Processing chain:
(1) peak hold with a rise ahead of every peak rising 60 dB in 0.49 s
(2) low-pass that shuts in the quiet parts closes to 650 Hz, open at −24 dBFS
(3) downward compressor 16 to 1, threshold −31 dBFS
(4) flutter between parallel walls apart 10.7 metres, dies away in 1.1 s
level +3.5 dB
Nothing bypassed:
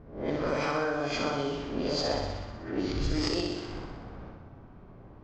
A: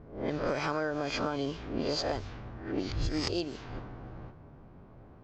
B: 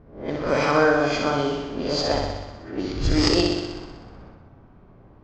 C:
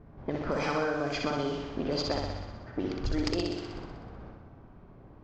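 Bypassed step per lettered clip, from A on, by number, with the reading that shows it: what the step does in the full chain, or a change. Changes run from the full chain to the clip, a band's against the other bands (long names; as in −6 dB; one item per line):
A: 4, change in integrated loudness −2.5 LU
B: 3, average gain reduction 3.5 dB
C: 1, 8 kHz band −2.5 dB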